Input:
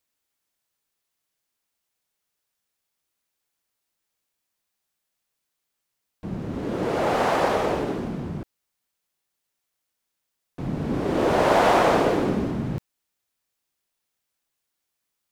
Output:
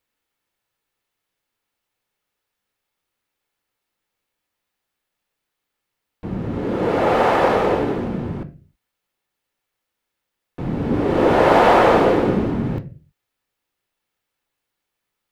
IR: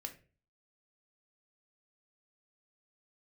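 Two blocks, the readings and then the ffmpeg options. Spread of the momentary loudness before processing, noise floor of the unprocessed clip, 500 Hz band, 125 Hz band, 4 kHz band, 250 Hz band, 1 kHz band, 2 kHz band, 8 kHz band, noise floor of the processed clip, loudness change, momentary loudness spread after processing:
16 LU, -81 dBFS, +6.0 dB, +5.0 dB, +2.0 dB, +5.5 dB, +5.5 dB, +4.5 dB, n/a, -81 dBFS, +5.5 dB, 17 LU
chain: -filter_complex "[0:a]asplit=2[a][b];[1:a]atrim=start_sample=2205,afade=t=out:st=0.39:d=0.01,atrim=end_sample=17640,lowpass=4k[c];[b][c]afir=irnorm=-1:irlink=0,volume=6.5dB[d];[a][d]amix=inputs=2:normalize=0,volume=-2dB"

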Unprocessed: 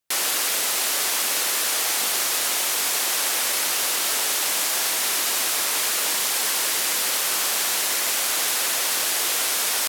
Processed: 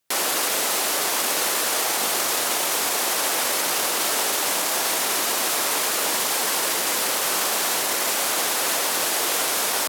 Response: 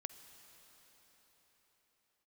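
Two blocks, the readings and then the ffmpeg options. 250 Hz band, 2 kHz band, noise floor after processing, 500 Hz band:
+6.5 dB, +0.5 dB, -24 dBFS, +6.5 dB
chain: -filter_complex "[0:a]highpass=74,acrossover=split=1200[a][b];[b]alimiter=limit=-21.5dB:level=0:latency=1[c];[a][c]amix=inputs=2:normalize=0,volume=6.5dB"

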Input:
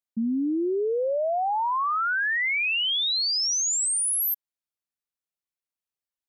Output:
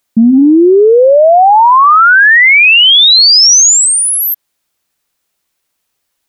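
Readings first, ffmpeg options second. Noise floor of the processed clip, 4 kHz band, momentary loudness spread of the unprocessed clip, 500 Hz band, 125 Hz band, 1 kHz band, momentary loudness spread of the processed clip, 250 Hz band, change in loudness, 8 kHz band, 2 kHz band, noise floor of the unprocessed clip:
-68 dBFS, +20.0 dB, 4 LU, +20.0 dB, n/a, +20.5 dB, 7 LU, +20.0 dB, +19.5 dB, +18.0 dB, +20.5 dB, under -85 dBFS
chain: -filter_complex "[0:a]acrossover=split=5800[a][b];[b]acompressor=threshold=-40dB:ratio=4:attack=1:release=60[c];[a][c]amix=inputs=2:normalize=0,bandreject=f=50:t=h:w=6,bandreject=f=100:t=h:w=6,bandreject=f=150:t=h:w=6,bandreject=f=200:t=h:w=6,bandreject=f=250:t=h:w=6,apsyclip=27dB,volume=-2dB"

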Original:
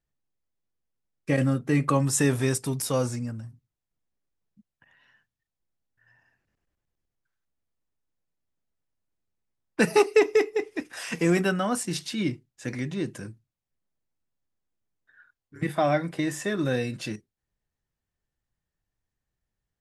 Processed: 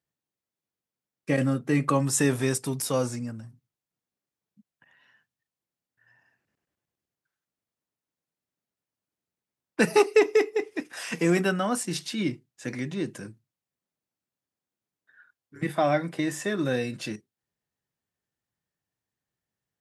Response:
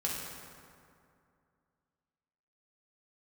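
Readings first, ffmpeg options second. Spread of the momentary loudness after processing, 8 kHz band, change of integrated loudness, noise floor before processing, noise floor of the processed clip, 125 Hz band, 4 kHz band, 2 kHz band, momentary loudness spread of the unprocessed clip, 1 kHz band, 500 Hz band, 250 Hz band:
15 LU, 0.0 dB, -0.5 dB, under -85 dBFS, under -85 dBFS, -2.5 dB, 0.0 dB, 0.0 dB, 15 LU, 0.0 dB, 0.0 dB, -0.5 dB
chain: -af "highpass=130"

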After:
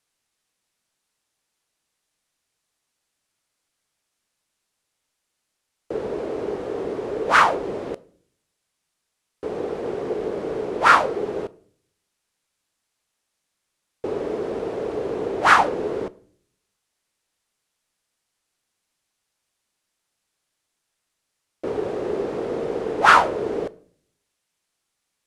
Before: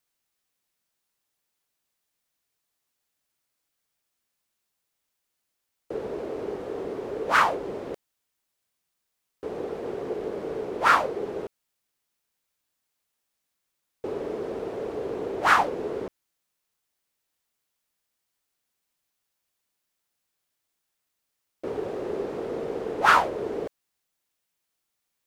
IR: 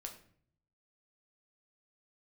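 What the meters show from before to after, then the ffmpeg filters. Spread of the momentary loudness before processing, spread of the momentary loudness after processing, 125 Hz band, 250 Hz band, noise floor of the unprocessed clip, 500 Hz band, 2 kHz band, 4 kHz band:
16 LU, 16 LU, +5.0 dB, +5.0 dB, -81 dBFS, +5.0 dB, +5.0 dB, +5.0 dB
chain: -filter_complex "[0:a]lowpass=f=11k:w=0.5412,lowpass=f=11k:w=1.3066,asplit=2[a][b];[1:a]atrim=start_sample=2205[c];[b][c]afir=irnorm=-1:irlink=0,volume=-7dB[d];[a][d]amix=inputs=2:normalize=0,volume=3dB"

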